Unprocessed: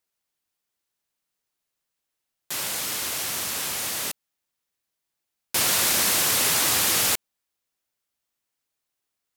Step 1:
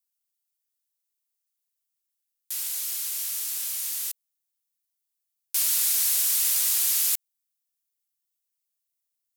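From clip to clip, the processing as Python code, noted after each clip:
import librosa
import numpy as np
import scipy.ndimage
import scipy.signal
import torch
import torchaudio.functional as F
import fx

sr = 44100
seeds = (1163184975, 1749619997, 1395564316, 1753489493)

y = np.diff(x, prepend=0.0)
y = y * librosa.db_to_amplitude(-2.5)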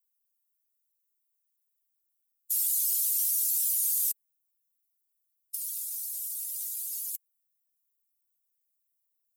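y = fx.spec_expand(x, sr, power=2.5)
y = fx.over_compress(y, sr, threshold_db=-29.0, ratio=-0.5)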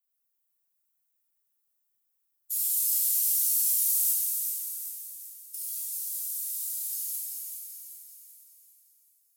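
y = fx.echo_feedback(x, sr, ms=386, feedback_pct=48, wet_db=-6.0)
y = fx.rev_plate(y, sr, seeds[0], rt60_s=3.6, hf_ratio=0.45, predelay_ms=0, drr_db=-7.5)
y = y * librosa.db_to_amplitude(-5.0)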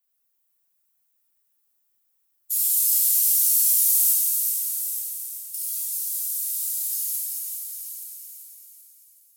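y = x + 10.0 ** (-11.5 / 20.0) * np.pad(x, (int(878 * sr / 1000.0), 0))[:len(x)]
y = y * librosa.db_to_amplitude(6.0)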